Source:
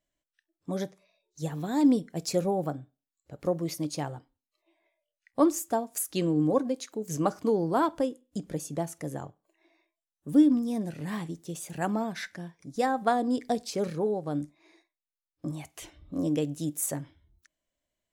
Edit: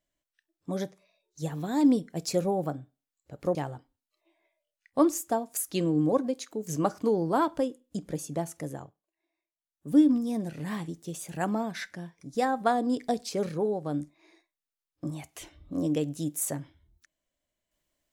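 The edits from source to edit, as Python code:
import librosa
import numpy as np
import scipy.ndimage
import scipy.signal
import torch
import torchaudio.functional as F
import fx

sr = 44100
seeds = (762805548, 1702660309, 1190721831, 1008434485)

y = fx.edit(x, sr, fx.cut(start_s=3.55, length_s=0.41),
    fx.fade_down_up(start_s=9.03, length_s=1.37, db=-17.0, fade_s=0.45), tone=tone)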